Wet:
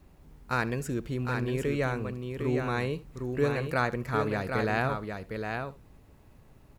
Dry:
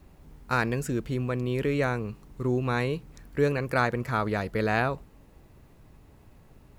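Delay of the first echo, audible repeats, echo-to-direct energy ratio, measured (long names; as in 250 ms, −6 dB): 72 ms, 3, −5.5 dB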